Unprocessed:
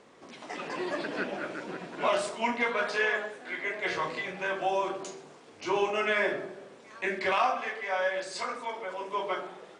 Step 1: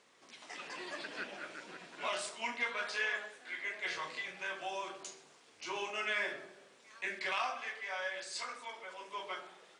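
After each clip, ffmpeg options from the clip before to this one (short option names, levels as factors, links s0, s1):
-af "tiltshelf=f=1200:g=-7.5,volume=0.355"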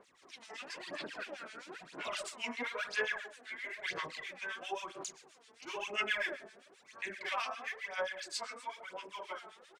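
-filter_complex "[0:a]aphaser=in_gain=1:out_gain=1:delay=4.6:decay=0.65:speed=1:type=sinusoidal,acrossover=split=1400[s0][s1];[s0]aeval=exprs='val(0)*(1-1/2+1/2*cos(2*PI*7.6*n/s))':c=same[s2];[s1]aeval=exprs='val(0)*(1-1/2-1/2*cos(2*PI*7.6*n/s))':c=same[s3];[s2][s3]amix=inputs=2:normalize=0,aresample=32000,aresample=44100,volume=1.26"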